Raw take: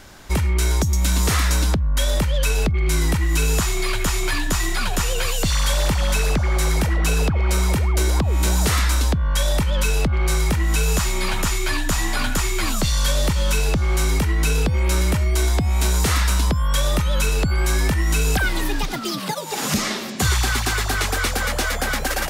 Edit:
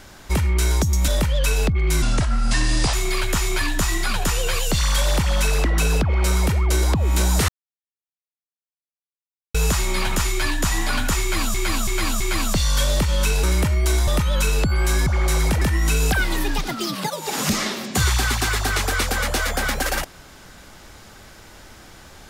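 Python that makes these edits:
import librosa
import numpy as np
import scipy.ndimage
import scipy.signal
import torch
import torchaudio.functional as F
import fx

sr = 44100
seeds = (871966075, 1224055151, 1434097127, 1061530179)

y = fx.edit(x, sr, fx.cut(start_s=1.08, length_s=0.99),
    fx.speed_span(start_s=3.01, length_s=0.64, speed=0.7),
    fx.move(start_s=6.37, length_s=0.55, to_s=17.86),
    fx.silence(start_s=8.75, length_s=2.06),
    fx.repeat(start_s=12.48, length_s=0.33, count=4),
    fx.cut(start_s=13.71, length_s=1.22),
    fx.cut(start_s=15.57, length_s=1.3), tone=tone)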